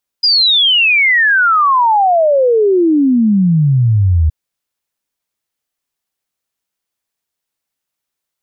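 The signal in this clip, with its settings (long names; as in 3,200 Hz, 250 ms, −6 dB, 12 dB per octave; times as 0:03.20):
exponential sine sweep 5,000 Hz → 75 Hz 4.07 s −7.5 dBFS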